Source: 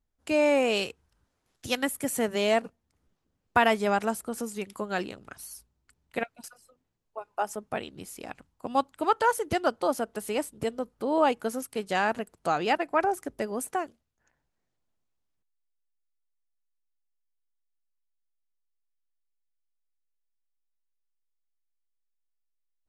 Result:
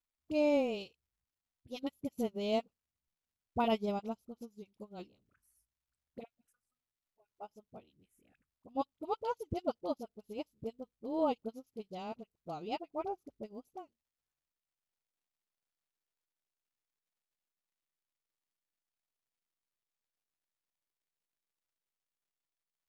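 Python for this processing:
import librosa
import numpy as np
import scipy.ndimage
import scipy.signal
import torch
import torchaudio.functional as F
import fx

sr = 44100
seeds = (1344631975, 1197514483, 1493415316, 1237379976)

y = fx.low_shelf(x, sr, hz=240.0, db=8.5)
y = fx.dispersion(y, sr, late='highs', ms=43.0, hz=850.0)
y = fx.env_phaser(y, sr, low_hz=390.0, high_hz=1700.0, full_db=-30.5)
y = fx.dmg_crackle(y, sr, seeds[0], per_s=350.0, level_db=-51.0)
y = fx.upward_expand(y, sr, threshold_db=-36.0, expansion=2.5)
y = y * 10.0 ** (-6.0 / 20.0)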